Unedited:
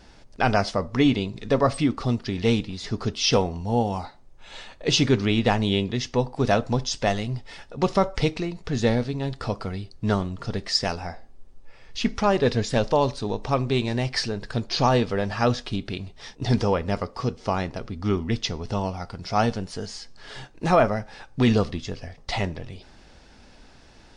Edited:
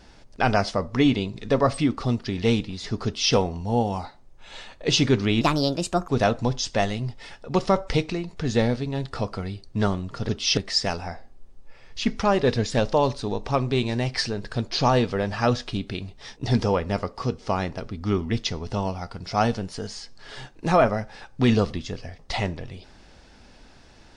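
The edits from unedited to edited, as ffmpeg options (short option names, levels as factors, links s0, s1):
-filter_complex "[0:a]asplit=5[s0][s1][s2][s3][s4];[s0]atrim=end=5.414[s5];[s1]atrim=start=5.41:end=6.36,asetpts=PTS-STARTPTS,asetrate=62181,aresample=44100[s6];[s2]atrim=start=6.356:end=10.562[s7];[s3]atrim=start=3.048:end=3.342[s8];[s4]atrim=start=10.558[s9];[s5][s6]acrossfade=d=0.004:c1=hsin:c2=hsin[s10];[s10][s7]acrossfade=d=0.004:c1=hsin:c2=hsin[s11];[s11][s8]acrossfade=d=0.004:c1=hsin:c2=hsin[s12];[s12][s9]acrossfade=d=0.004:c1=hsin:c2=hsin"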